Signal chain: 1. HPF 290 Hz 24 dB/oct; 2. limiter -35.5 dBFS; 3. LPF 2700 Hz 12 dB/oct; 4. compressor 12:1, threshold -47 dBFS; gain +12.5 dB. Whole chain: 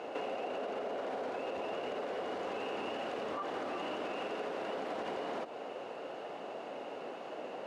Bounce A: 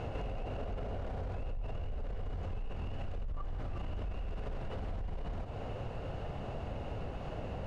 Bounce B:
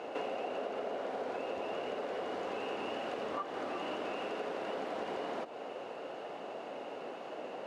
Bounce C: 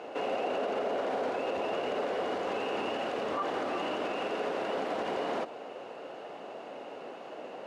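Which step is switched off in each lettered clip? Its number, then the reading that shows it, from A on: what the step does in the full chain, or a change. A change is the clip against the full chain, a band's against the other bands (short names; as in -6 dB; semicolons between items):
1, 125 Hz band +28.5 dB; 2, mean gain reduction 2.0 dB; 4, mean gain reduction 4.0 dB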